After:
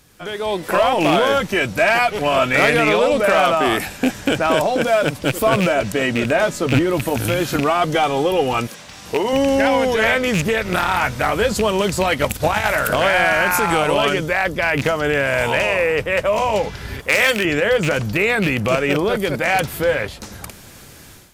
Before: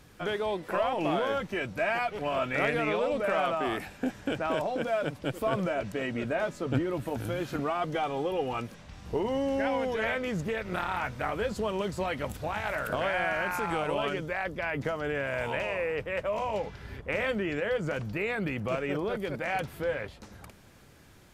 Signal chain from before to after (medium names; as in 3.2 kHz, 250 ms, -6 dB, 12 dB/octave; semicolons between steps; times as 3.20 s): rattle on loud lows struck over -31 dBFS, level -27 dBFS; 8.67–9.33 s: high-pass 390 Hz 6 dB/octave; 12.12–12.67 s: transient shaper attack +7 dB, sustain -6 dB; treble shelf 3.9 kHz +10.5 dB; overload inside the chain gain 20 dB; level rider gain up to 12.5 dB; 16.99–17.45 s: tilt EQ +2.5 dB/octave